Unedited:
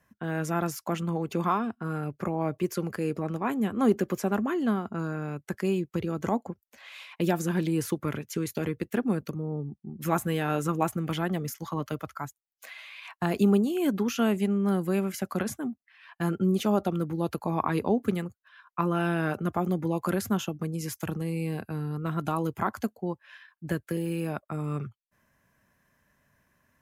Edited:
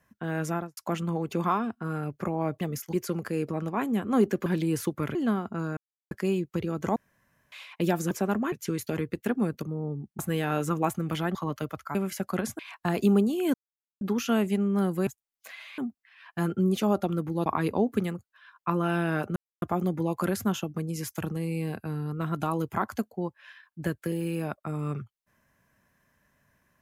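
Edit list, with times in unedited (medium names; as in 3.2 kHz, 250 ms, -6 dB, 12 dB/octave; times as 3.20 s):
0.48–0.77 s: studio fade out
4.14–4.55 s: swap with 7.51–8.20 s
5.17–5.51 s: mute
6.36–6.92 s: room tone
9.87–10.17 s: delete
11.33–11.65 s: move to 2.61 s
12.25–12.96 s: swap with 14.97–15.61 s
13.91 s: insert silence 0.47 s
17.29–17.57 s: delete
19.47 s: insert silence 0.26 s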